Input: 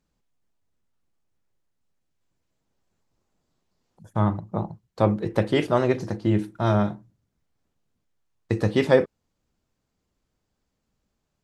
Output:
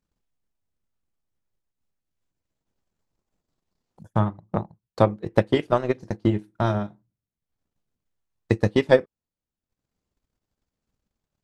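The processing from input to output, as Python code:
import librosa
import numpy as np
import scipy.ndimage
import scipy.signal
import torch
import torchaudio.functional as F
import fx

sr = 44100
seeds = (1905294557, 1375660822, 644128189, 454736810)

y = fx.transient(x, sr, attack_db=11, sustain_db=-10)
y = F.gain(torch.from_numpy(y), -6.0).numpy()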